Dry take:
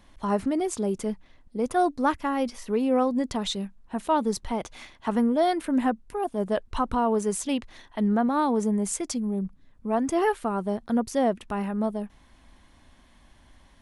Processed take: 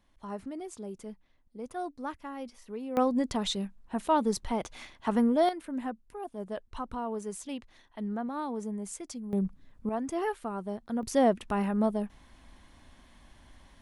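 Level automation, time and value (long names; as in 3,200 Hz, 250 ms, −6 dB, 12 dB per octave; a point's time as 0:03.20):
−13.5 dB
from 0:02.97 −2 dB
from 0:05.49 −11 dB
from 0:09.33 +0.5 dB
from 0:09.89 −8 dB
from 0:11.03 0 dB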